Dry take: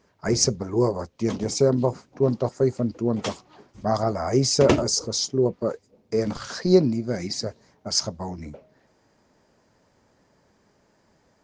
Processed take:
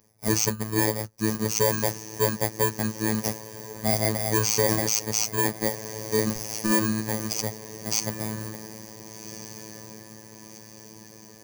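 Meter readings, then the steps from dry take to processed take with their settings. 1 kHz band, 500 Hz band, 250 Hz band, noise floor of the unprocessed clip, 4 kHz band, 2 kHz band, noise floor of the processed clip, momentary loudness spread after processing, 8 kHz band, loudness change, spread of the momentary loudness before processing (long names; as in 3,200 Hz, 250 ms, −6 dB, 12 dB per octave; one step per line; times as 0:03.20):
0.0 dB, −6.0 dB, −3.5 dB, −65 dBFS, −3.0 dB, +7.0 dB, −48 dBFS, 19 LU, +2.5 dB, −1.0 dB, 14 LU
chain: samples in bit-reversed order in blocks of 32 samples
thirty-one-band graphic EQ 125 Hz −11 dB, 250 Hz −11 dB, 3,150 Hz −10 dB, 6,300 Hz +10 dB
on a send: feedback delay with all-pass diffusion 1,486 ms, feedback 53%, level −15.5 dB
on the sum: phases set to zero 109 Hz
parametric band 150 Hz +10.5 dB 0.99 octaves
boost into a limiter +2 dB
level −1 dB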